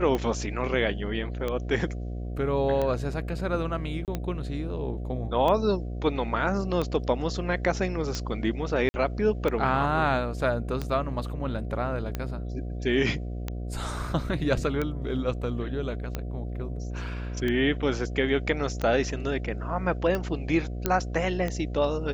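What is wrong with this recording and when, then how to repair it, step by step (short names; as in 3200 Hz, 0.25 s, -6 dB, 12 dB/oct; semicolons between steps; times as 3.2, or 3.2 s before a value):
buzz 60 Hz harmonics 12 -33 dBFS
tick 45 rpm -16 dBFS
4.05–4.08 gap 28 ms
8.89–8.94 gap 50 ms
20.86 pop -9 dBFS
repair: de-click; de-hum 60 Hz, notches 12; interpolate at 4.05, 28 ms; interpolate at 8.89, 50 ms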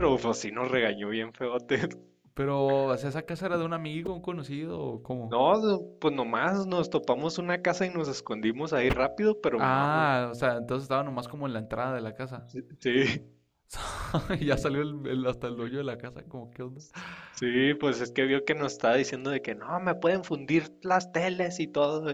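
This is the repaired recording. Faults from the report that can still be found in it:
none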